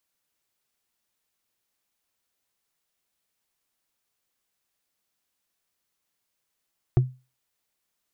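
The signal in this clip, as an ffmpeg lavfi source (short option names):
-f lavfi -i "aevalsrc='0.266*pow(10,-3*t/0.29)*sin(2*PI*128*t)+0.106*pow(10,-3*t/0.086)*sin(2*PI*352.9*t)+0.0422*pow(10,-3*t/0.038)*sin(2*PI*691.7*t)+0.0168*pow(10,-3*t/0.021)*sin(2*PI*1143.4*t)+0.00668*pow(10,-3*t/0.013)*sin(2*PI*1707.5*t)':d=0.45:s=44100"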